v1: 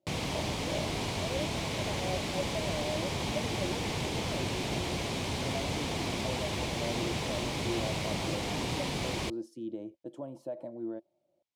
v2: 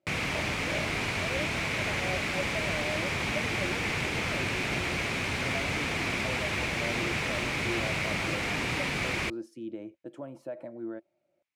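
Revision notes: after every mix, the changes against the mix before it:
master: add high-order bell 1.8 kHz +10.5 dB 1.3 oct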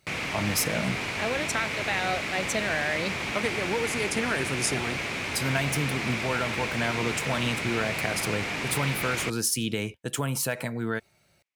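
speech: remove two resonant band-passes 440 Hz, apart 0.74 oct; background: add bass shelf 140 Hz -6.5 dB

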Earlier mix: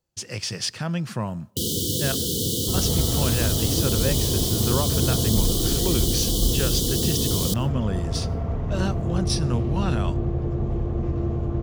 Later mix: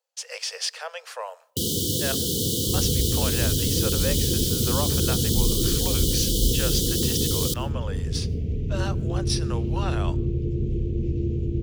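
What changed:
speech: add Chebyshev high-pass 450 Hz, order 8; second sound: add Chebyshev band-stop 430–2500 Hz, order 3

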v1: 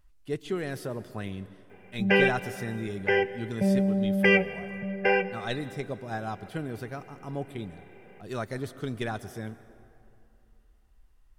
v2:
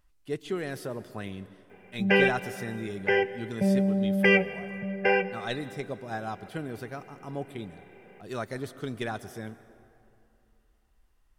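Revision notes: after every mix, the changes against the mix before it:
speech: add bass shelf 110 Hz -7.5 dB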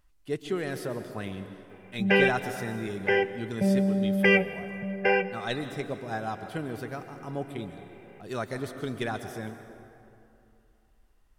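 speech: send +8.0 dB

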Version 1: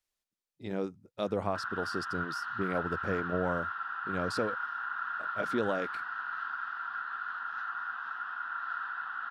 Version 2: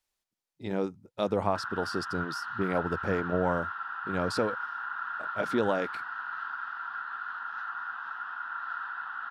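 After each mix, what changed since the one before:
speech +3.5 dB; master: add peaking EQ 890 Hz +5 dB 0.31 oct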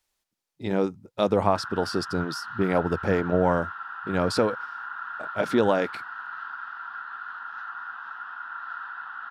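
speech +6.0 dB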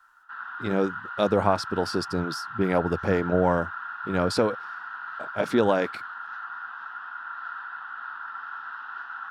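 background: entry -1.25 s

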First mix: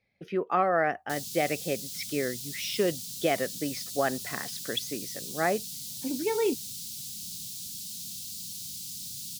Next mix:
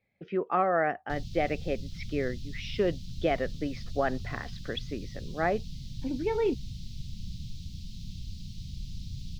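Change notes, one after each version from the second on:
background: remove high-pass 270 Hz 12 dB/octave; master: add distance through air 250 m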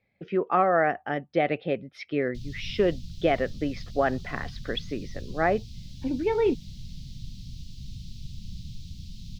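speech +4.0 dB; background: entry +1.25 s

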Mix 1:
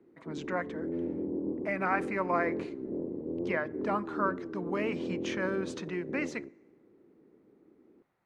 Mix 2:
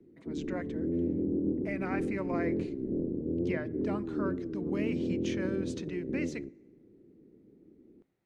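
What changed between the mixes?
background: add tilt EQ -3 dB/octave; master: add peaking EQ 1.1 kHz -12.5 dB 1.6 oct

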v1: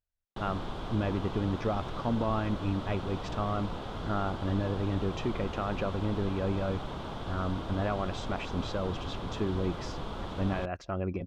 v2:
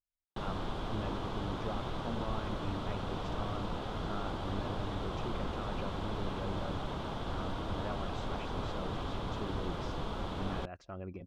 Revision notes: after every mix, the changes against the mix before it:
speech -10.5 dB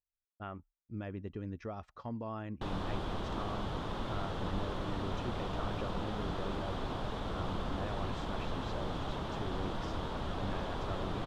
background: entry +2.25 s; master: remove band-stop 1.8 kHz, Q 20

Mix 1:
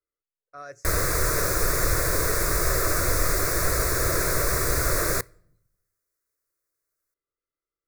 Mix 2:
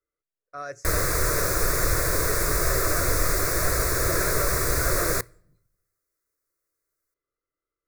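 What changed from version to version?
speech +5.0 dB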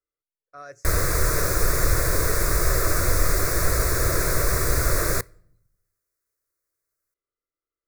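speech -5.5 dB; background: add bass shelf 150 Hz +5 dB

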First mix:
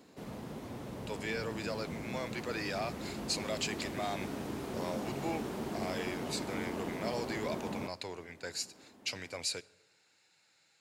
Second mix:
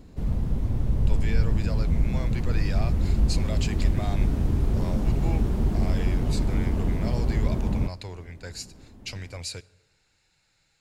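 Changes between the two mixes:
background: add bass shelf 420 Hz +7 dB; master: remove high-pass 250 Hz 12 dB/octave

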